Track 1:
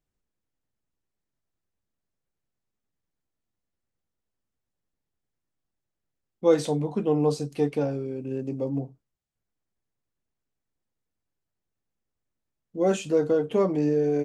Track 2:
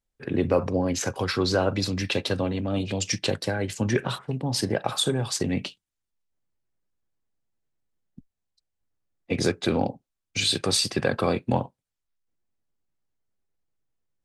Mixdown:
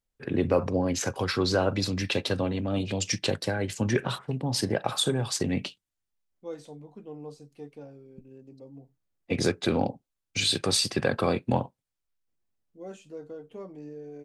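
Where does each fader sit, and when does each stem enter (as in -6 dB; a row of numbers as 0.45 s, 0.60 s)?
-18.5 dB, -1.5 dB; 0.00 s, 0.00 s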